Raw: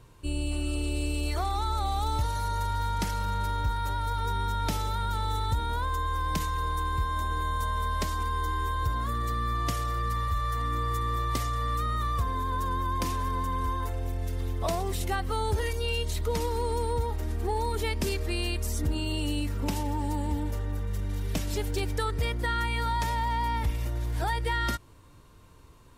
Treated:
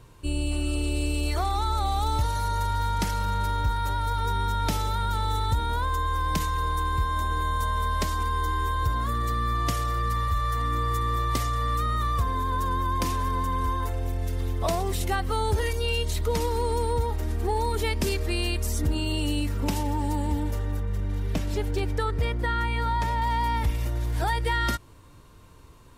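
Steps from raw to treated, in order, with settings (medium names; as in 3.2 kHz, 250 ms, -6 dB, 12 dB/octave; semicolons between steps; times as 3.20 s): 20.80–23.22 s: treble shelf 3.6 kHz -10 dB; trim +3 dB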